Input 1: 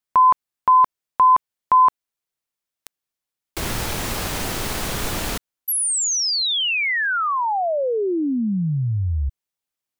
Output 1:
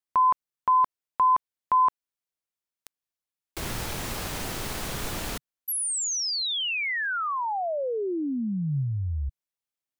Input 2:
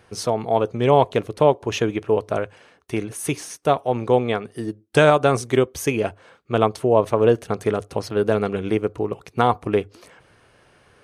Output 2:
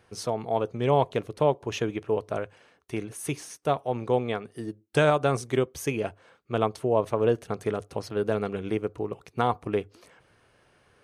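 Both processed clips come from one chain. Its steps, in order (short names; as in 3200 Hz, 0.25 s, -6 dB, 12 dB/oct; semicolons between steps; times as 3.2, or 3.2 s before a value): dynamic EQ 140 Hz, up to +3 dB, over -40 dBFS, Q 5.7; gain -7 dB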